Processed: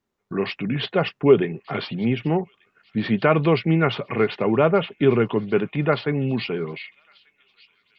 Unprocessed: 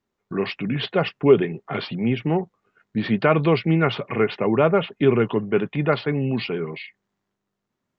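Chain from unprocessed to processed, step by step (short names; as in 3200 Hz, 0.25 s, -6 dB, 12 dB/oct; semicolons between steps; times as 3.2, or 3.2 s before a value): thin delay 1.188 s, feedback 51%, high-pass 3100 Hz, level -18 dB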